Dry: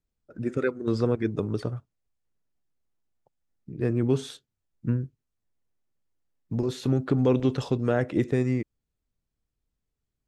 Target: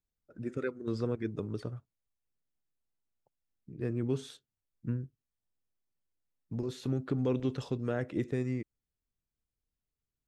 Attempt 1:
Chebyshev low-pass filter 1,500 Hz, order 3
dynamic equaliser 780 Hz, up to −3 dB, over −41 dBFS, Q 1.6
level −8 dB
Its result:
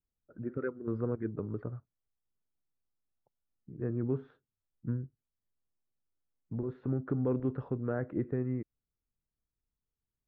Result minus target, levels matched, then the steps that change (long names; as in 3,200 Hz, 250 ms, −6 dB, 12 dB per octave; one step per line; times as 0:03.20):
2,000 Hz band −3.0 dB
remove: Chebyshev low-pass filter 1,500 Hz, order 3